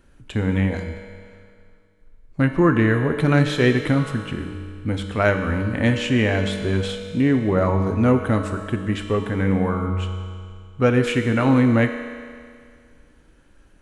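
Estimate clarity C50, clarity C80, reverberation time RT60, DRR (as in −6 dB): 6.5 dB, 7.5 dB, 2.1 s, 5.0 dB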